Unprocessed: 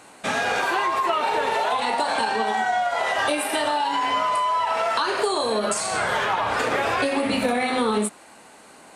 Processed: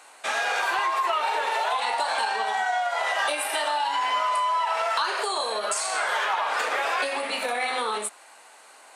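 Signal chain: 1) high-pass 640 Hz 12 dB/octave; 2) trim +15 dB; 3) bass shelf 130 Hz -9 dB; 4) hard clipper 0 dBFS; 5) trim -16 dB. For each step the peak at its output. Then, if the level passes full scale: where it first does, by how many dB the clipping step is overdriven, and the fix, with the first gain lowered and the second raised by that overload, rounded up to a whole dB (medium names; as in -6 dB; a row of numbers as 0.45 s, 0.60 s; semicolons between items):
-11.0 dBFS, +4.0 dBFS, +3.5 dBFS, 0.0 dBFS, -16.0 dBFS; step 2, 3.5 dB; step 2 +11 dB, step 5 -12 dB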